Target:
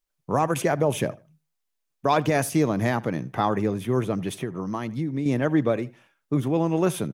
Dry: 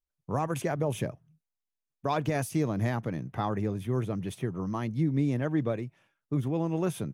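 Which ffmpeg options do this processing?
-filter_complex "[0:a]equalizer=f=61:t=o:w=2.1:g=-12,asplit=2[s0][s1];[s1]adelay=78,lowpass=f=4400:p=1,volume=0.0841,asplit=2[s2][s3];[s3]adelay=78,lowpass=f=4400:p=1,volume=0.25[s4];[s0][s2][s4]amix=inputs=3:normalize=0,asettb=1/sr,asplit=3[s5][s6][s7];[s5]atrim=end=4.404[s8];[s6]atrim=start=4.4:end=5.26,asetpts=PTS-STARTPTS,afade=t=in:d=0.004:c=qsin,afade=t=out:st=0.856:d=0.004:c=qsin,acompressor=threshold=0.0158:ratio=2.5[s9];[s7]atrim=start=5.256[s10];[s8][s9]acrossfade=d=0.004:c1=hsin:c2=qsin[s11];[s11][s10]acrossfade=d=0.004:c1=qsin:c2=hsin,volume=2.66"

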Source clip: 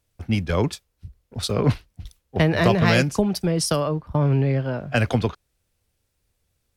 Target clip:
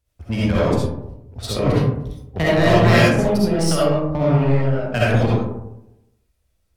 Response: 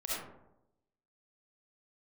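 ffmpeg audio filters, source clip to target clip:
-filter_complex "[0:a]equalizer=f=64:t=o:w=0.6:g=12.5,asplit=2[s0][s1];[s1]acrusher=bits=2:mix=0:aa=0.5,volume=0.501[s2];[s0][s2]amix=inputs=2:normalize=0[s3];[1:a]atrim=start_sample=2205[s4];[s3][s4]afir=irnorm=-1:irlink=0,volume=0.708"

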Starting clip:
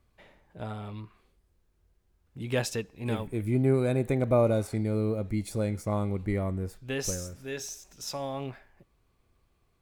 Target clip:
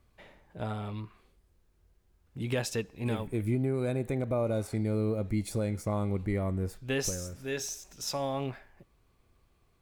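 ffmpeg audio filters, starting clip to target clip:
-af "alimiter=limit=0.075:level=0:latency=1:release=349,volume=1.26"

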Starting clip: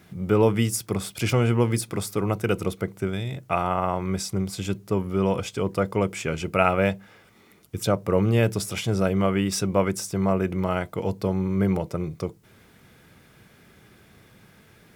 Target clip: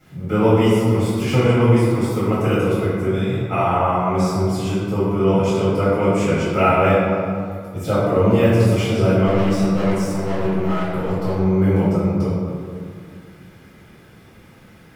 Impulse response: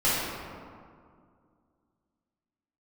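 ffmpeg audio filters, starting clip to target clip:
-filter_complex "[0:a]deesser=0.65,asettb=1/sr,asplit=3[s0][s1][s2];[s0]atrim=end=9.264[s3];[s1]atrim=start=9.26:end=11.34,asetpts=PTS-STARTPTS,afade=t=in:d=0.004:c=qsin,afade=t=out:st=2.076:d=0.004:c=qsin,asoftclip=type=hard:threshold=0.0596[s4];[s2]atrim=start=11.336[s5];[s3][s4]acrossfade=d=0.004:c1=hsin:c2=qsin[s6];[s6][s5]acrossfade=d=0.004:c1=qsin:c2=hsin[s7];[1:a]atrim=start_sample=2205[s8];[s7][s8]afir=irnorm=-1:irlink=0,volume=0.376"

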